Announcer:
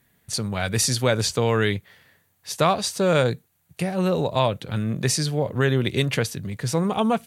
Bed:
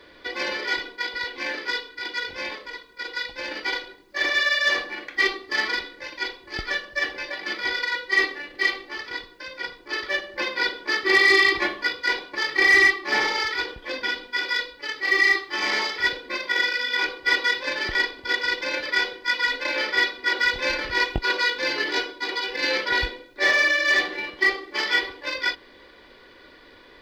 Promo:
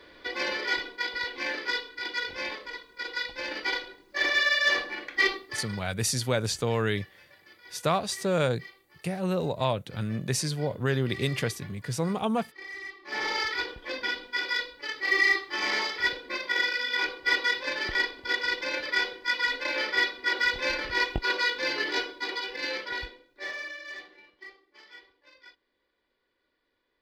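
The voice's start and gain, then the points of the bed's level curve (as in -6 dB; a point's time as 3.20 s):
5.25 s, -6.0 dB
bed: 5.34 s -2.5 dB
5.91 s -25 dB
12.83 s -25 dB
13.32 s -4 dB
22.23 s -4 dB
24.60 s -28 dB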